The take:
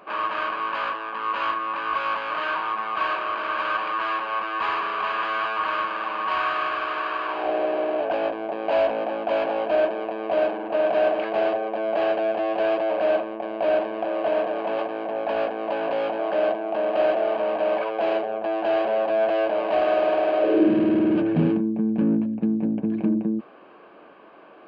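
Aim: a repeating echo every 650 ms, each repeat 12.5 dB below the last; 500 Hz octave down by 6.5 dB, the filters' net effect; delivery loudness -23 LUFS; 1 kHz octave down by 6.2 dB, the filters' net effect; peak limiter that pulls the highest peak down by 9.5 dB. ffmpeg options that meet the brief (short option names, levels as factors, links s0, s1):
-af "equalizer=f=500:t=o:g=-6.5,equalizer=f=1000:t=o:g=-6,alimiter=limit=0.0891:level=0:latency=1,aecho=1:1:650|1300|1950:0.237|0.0569|0.0137,volume=2.24"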